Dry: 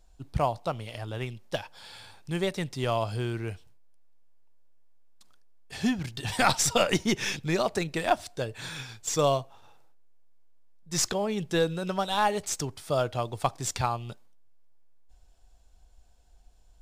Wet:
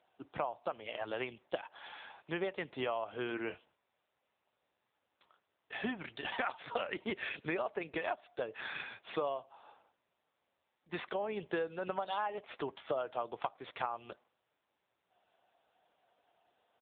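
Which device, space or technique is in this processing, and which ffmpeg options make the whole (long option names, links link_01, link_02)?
voicemail: -filter_complex "[0:a]asplit=3[link_01][link_02][link_03];[link_01]afade=type=out:start_time=3.25:duration=0.02[link_04];[link_02]asplit=2[link_05][link_06];[link_06]adelay=21,volume=-9dB[link_07];[link_05][link_07]amix=inputs=2:normalize=0,afade=type=in:start_time=3.25:duration=0.02,afade=type=out:start_time=5.83:duration=0.02[link_08];[link_03]afade=type=in:start_time=5.83:duration=0.02[link_09];[link_04][link_08][link_09]amix=inputs=3:normalize=0,highpass=430,lowpass=3000,acompressor=threshold=-37dB:ratio=8,volume=5dB" -ar 8000 -c:a libopencore_amrnb -b:a 6700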